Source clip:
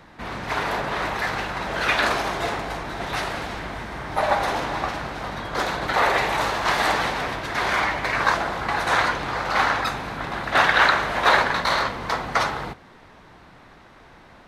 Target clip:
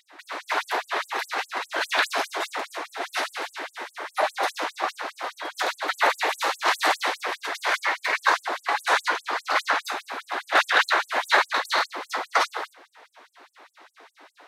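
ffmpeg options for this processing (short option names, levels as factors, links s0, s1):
-af "acontrast=62,afftfilt=real='re*gte(b*sr/1024,250*pow(7700/250,0.5+0.5*sin(2*PI*4.9*pts/sr)))':imag='im*gte(b*sr/1024,250*pow(7700/250,0.5+0.5*sin(2*PI*4.9*pts/sr)))':win_size=1024:overlap=0.75,volume=0.562"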